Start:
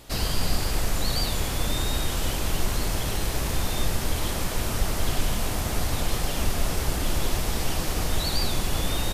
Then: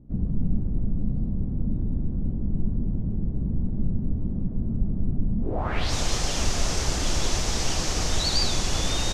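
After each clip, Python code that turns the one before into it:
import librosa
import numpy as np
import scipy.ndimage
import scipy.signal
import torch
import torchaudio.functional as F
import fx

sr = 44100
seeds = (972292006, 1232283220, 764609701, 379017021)

y = fx.filter_sweep_lowpass(x, sr, from_hz=210.0, to_hz=6300.0, start_s=5.39, end_s=5.93, q=2.6)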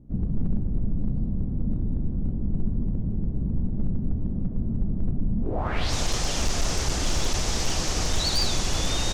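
y = np.clip(x, -10.0 ** (-16.5 / 20.0), 10.0 ** (-16.5 / 20.0))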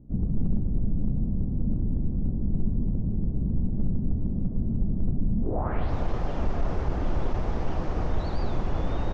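y = scipy.signal.sosfilt(scipy.signal.butter(2, 1100.0, 'lowpass', fs=sr, output='sos'), x)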